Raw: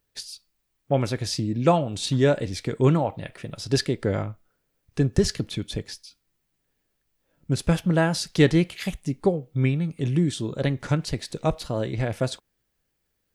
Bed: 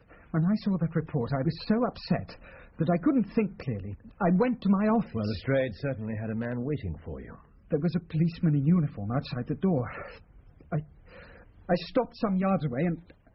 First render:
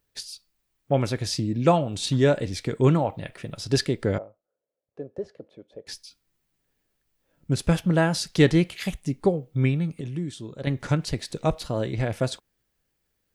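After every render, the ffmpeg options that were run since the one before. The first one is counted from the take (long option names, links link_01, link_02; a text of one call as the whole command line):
ffmpeg -i in.wav -filter_complex "[0:a]asettb=1/sr,asplit=3[link_01][link_02][link_03];[link_01]atrim=end=4.184[link_04];[link_02]atrim=start=4.18:end=5.87,asetpts=PTS-STARTPTS,afade=type=in:duration=0.004:curve=qsin,afade=type=out:start_time=1.686:duration=0.004:curve=qsin,bandpass=frequency=550:width_type=q:width=4.3[link_05];[link_03]atrim=start=5.866[link_06];[link_04][link_05]acrossfade=duration=0.004:curve1=hsin:curve2=qsin[link_07];[link_07][link_06]acrossfade=duration=0.004:curve1=qsin:curve2=hsin,asplit=3[link_08][link_09][link_10];[link_08]atrim=end=10.012[link_11];[link_09]atrim=start=10.008:end=10.672,asetpts=PTS-STARTPTS,volume=-8.5dB[link_12];[link_10]atrim=start=10.668[link_13];[link_11][link_12]acrossfade=duration=0.004:curve1=hsin:curve2=hsin[link_14];[link_14][link_13]acrossfade=duration=0.004:curve1=hsin:curve2=hsin" out.wav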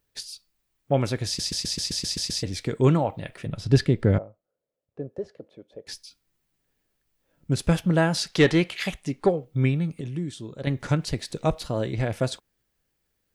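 ffmpeg -i in.wav -filter_complex "[0:a]asettb=1/sr,asplit=3[link_01][link_02][link_03];[link_01]atrim=end=3.464[link_04];[link_02]atrim=start=3.46:end=5.09,asetpts=PTS-STARTPTS,afade=type=in:duration=0.004:curve=qsin,afade=type=out:start_time=1.626:duration=0.004:curve=qsin,bass=frequency=250:gain=8,treble=frequency=4000:gain=-8[link_05];[link_03]atrim=start=5.086[link_06];[link_04][link_05]acrossfade=duration=0.004:curve1=hsin:curve2=qsin[link_07];[link_07][link_06]acrossfade=duration=0.004:curve1=qsin:curve2=hsin,asettb=1/sr,asplit=3[link_08][link_09][link_10];[link_08]atrim=end=8.174[link_11];[link_09]atrim=start=8.17:end=9.45,asetpts=PTS-STARTPTS,afade=type=in:duration=0.004:curve=qsin,afade=type=out:start_time=1.276:duration=0.004:curve=qsin,asplit=2[link_12][link_13];[link_13]highpass=frequency=720:poles=1,volume=11dB,asoftclip=type=tanh:threshold=-6dB[link_14];[link_12][link_14]amix=inputs=2:normalize=0,lowpass=frequency=3400:poles=1,volume=-6dB[link_15];[link_10]atrim=start=9.446[link_16];[link_11][link_15]acrossfade=duration=0.004:curve1=hsin:curve2=qsin[link_17];[link_17][link_16]acrossfade=duration=0.004:curve1=qsin:curve2=hsin,asplit=10[link_18][link_19][link_20][link_21][link_22][link_23][link_24][link_25][link_26][link_27];[link_18]atrim=end=1.392[link_28];[link_19]atrim=start=1.258:end=1.392[link_29];[link_20]atrim=start=1.258:end=1.392[link_30];[link_21]atrim=start=1.258:end=1.392[link_31];[link_22]atrim=start=1.258:end=1.392[link_32];[link_23]atrim=start=1.258:end=1.392[link_33];[link_24]atrim=start=1.258:end=1.392[link_34];[link_25]atrim=start=1.258:end=1.392[link_35];[link_26]atrim=start=1.258:end=1.392[link_36];[link_27]atrim=start=2.428[link_37];[link_28][link_29]acrossfade=duration=0.004:curve1=hsin:curve2=hsin[link_38];[link_38][link_30]acrossfade=duration=0.004:curve1=hsin:curve2=hsin[link_39];[link_39][link_31]acrossfade=duration=0.004:curve1=hsin:curve2=hsin[link_40];[link_40][link_32]acrossfade=duration=0.004:curve1=hsin:curve2=hsin[link_41];[link_41][link_33]acrossfade=duration=0.004:curve1=hsin:curve2=hsin[link_42];[link_42][link_34]acrossfade=duration=0.004:curve1=hsin:curve2=hsin[link_43];[link_43][link_35]acrossfade=duration=0.004:curve1=hsin:curve2=hsin[link_44];[link_44][link_36]acrossfade=duration=0.004:curve1=hsin:curve2=hsin[link_45];[link_45][link_37]acrossfade=duration=0.004:curve1=hsin:curve2=hsin" out.wav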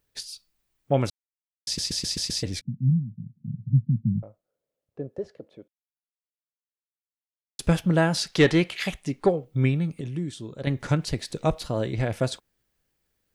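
ffmpeg -i in.wav -filter_complex "[0:a]asettb=1/sr,asplit=3[link_01][link_02][link_03];[link_01]atrim=end=2.614[link_04];[link_02]atrim=start=2.61:end=4.23,asetpts=PTS-STARTPTS,afade=type=in:duration=0.004:curve=qsin,afade=type=out:start_time=1.616:duration=0.004:curve=qsin,asuperpass=centerf=160:order=12:qfactor=1.2[link_05];[link_03]atrim=start=4.226[link_06];[link_04][link_05]acrossfade=duration=0.004:curve1=hsin:curve2=qsin[link_07];[link_07][link_06]acrossfade=duration=0.004:curve1=qsin:curve2=hsin,asplit=5[link_08][link_09][link_10][link_11][link_12];[link_08]atrim=end=1.1,asetpts=PTS-STARTPTS,afade=type=out:start_time=1.096:duration=0.004:curve=hsin[link_13];[link_09]atrim=start=1.1:end=1.67,asetpts=PTS-STARTPTS,volume=0[link_14];[link_10]atrim=start=1.67:end=5.68,asetpts=PTS-STARTPTS,afade=type=in:duration=0.004:curve=hsin,afade=type=out:start_time=4.006:duration=0.004:curve=hsin[link_15];[link_11]atrim=start=5.68:end=7.59,asetpts=PTS-STARTPTS,volume=0[link_16];[link_12]atrim=start=7.59,asetpts=PTS-STARTPTS,afade=type=in:duration=0.004:curve=hsin[link_17];[link_13][link_14][link_15][link_16][link_17]concat=n=5:v=0:a=1" out.wav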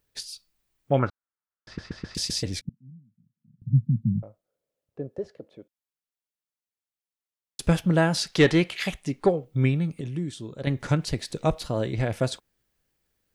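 ffmpeg -i in.wav -filter_complex "[0:a]asettb=1/sr,asplit=3[link_01][link_02][link_03];[link_01]atrim=end=0.994[link_04];[link_02]atrim=start=0.99:end=2.15,asetpts=PTS-STARTPTS,afade=type=in:duration=0.004:curve=qsin,afade=type=out:start_time=1.156:duration=0.004:curve=qsin,lowpass=frequency=1400:width_type=q:width=3.5[link_05];[link_03]atrim=start=2.146[link_06];[link_04][link_05]acrossfade=duration=0.004:curve1=hsin:curve2=qsin[link_07];[link_07][link_06]acrossfade=duration=0.004:curve1=qsin:curve2=hsin,asettb=1/sr,asplit=3[link_08][link_09][link_10];[link_08]atrim=end=2.694[link_11];[link_09]atrim=start=2.69:end=3.62,asetpts=PTS-STARTPTS,afade=type=in:duration=0.004:curve=qsin,afade=type=out:start_time=0.926:duration=0.004:curve=qsin,bandpass=frequency=1500:width_type=q:width=2[link_12];[link_10]atrim=start=3.616[link_13];[link_11][link_12]acrossfade=duration=0.004:curve1=hsin:curve2=qsin[link_14];[link_14][link_13]acrossfade=duration=0.004:curve1=qsin:curve2=hsin" out.wav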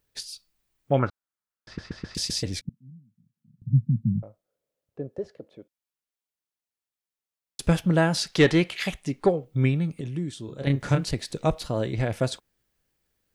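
ffmpeg -i in.wav -filter_complex "[0:a]asettb=1/sr,asplit=3[link_01][link_02][link_03];[link_01]atrim=end=10.454[link_04];[link_02]atrim=start=10.45:end=11.11,asetpts=PTS-STARTPTS,afade=type=in:duration=0.004:curve=qsin,afade=type=out:start_time=0.656:duration=0.004:curve=qsin,asplit=2[link_05][link_06];[link_06]adelay=29,volume=-5dB[link_07];[link_05][link_07]amix=inputs=2:normalize=0,atrim=end_sample=29106[link_08];[link_03]atrim=start=11.106[link_09];[link_04][link_08]acrossfade=duration=0.004:curve1=hsin:curve2=qsin[link_10];[link_10][link_09]acrossfade=duration=0.004:curve1=qsin:curve2=hsin" out.wav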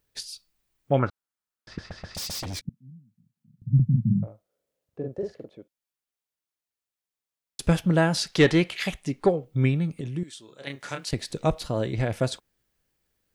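ffmpeg -i in.wav -filter_complex "[0:a]asettb=1/sr,asplit=3[link_01][link_02][link_03];[link_01]atrim=end=1.794[link_04];[link_02]atrim=start=1.79:end=2.63,asetpts=PTS-STARTPTS,afade=type=in:duration=0.004:curve=qsin,afade=type=out:start_time=0.836:duration=0.004:curve=qsin,aeval=exprs='0.0398*(abs(mod(val(0)/0.0398+3,4)-2)-1)':channel_layout=same[link_05];[link_03]atrim=start=2.626[link_06];[link_04][link_05]acrossfade=duration=0.004:curve1=hsin:curve2=qsin[link_07];[link_07][link_06]acrossfade=duration=0.004:curve1=qsin:curve2=hsin,asettb=1/sr,asplit=3[link_08][link_09][link_10];[link_08]atrim=end=3.754[link_11];[link_09]atrim=start=3.75:end=5.5,asetpts=PTS-STARTPTS,afade=type=in:duration=0.004:curve=qsin,afade=type=out:start_time=1.746:duration=0.004:curve=qsin,asplit=2[link_12][link_13];[link_13]adelay=45,volume=-2dB[link_14];[link_12][link_14]amix=inputs=2:normalize=0,atrim=end_sample=77175[link_15];[link_10]atrim=start=5.496[link_16];[link_11][link_15]acrossfade=duration=0.004:curve1=hsin:curve2=qsin[link_17];[link_17][link_16]acrossfade=duration=0.004:curve1=qsin:curve2=hsin,asettb=1/sr,asplit=3[link_18][link_19][link_20];[link_18]atrim=end=10.234[link_21];[link_19]atrim=start=10.23:end=11.13,asetpts=PTS-STARTPTS,afade=type=in:duration=0.004:curve=qsin,afade=type=out:start_time=0.896:duration=0.004:curve=qsin,highpass=frequency=1300:poles=1[link_22];[link_20]atrim=start=11.126[link_23];[link_21][link_22]acrossfade=duration=0.004:curve1=hsin:curve2=qsin[link_24];[link_24][link_23]acrossfade=duration=0.004:curve1=qsin:curve2=hsin" out.wav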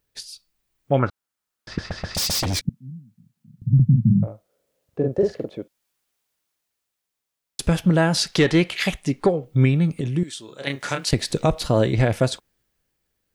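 ffmpeg -i in.wav -af "dynaudnorm=framelen=150:gausssize=17:maxgain=15.5dB,alimiter=limit=-8dB:level=0:latency=1:release=181" out.wav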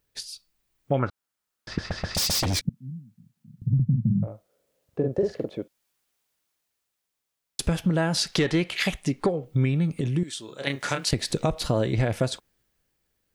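ffmpeg -i in.wav -af "acompressor=threshold=-22dB:ratio=2.5" out.wav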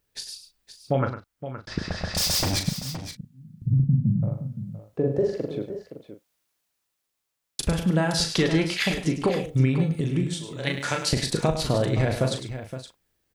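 ffmpeg -i in.wav -filter_complex "[0:a]asplit=2[link_01][link_02];[link_02]adelay=38,volume=-7.5dB[link_03];[link_01][link_03]amix=inputs=2:normalize=0,aecho=1:1:103|518:0.316|0.266" out.wav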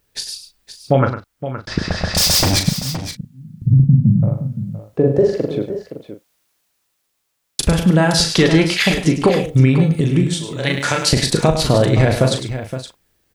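ffmpeg -i in.wav -af "volume=9.5dB,alimiter=limit=-3dB:level=0:latency=1" out.wav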